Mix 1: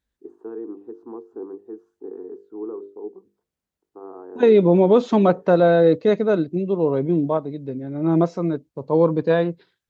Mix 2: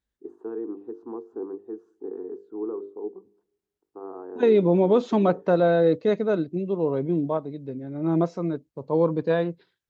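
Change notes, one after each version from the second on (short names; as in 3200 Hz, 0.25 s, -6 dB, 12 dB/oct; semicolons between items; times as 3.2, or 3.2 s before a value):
second voice -4.5 dB; reverb: on, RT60 0.95 s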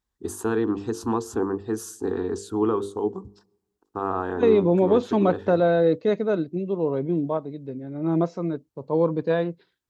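first voice: remove ladder band-pass 440 Hz, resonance 40%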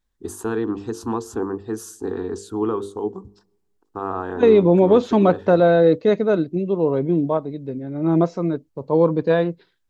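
second voice +5.0 dB; master: remove HPF 45 Hz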